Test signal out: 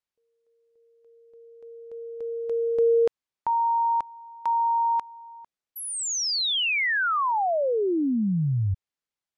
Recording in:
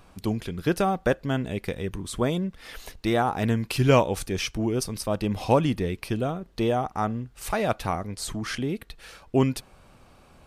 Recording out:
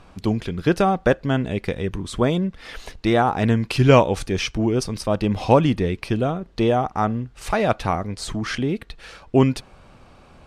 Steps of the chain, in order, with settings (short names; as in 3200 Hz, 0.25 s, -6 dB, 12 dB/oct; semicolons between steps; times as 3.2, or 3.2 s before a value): air absorption 59 m; gain +5.5 dB